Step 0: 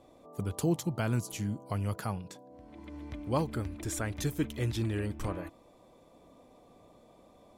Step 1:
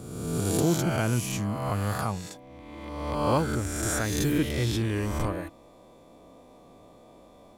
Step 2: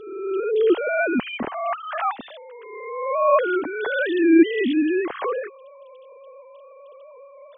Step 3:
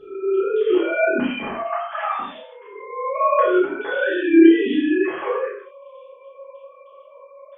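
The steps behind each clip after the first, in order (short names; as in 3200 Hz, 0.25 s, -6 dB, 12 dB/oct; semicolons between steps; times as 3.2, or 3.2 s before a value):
spectral swells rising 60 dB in 1.41 s; gain +3 dB
sine-wave speech; gain +6 dB
chorus voices 2, 0.31 Hz, delay 30 ms, depth 2.8 ms; reverb, pre-delay 3 ms, DRR -6 dB; gain -2.5 dB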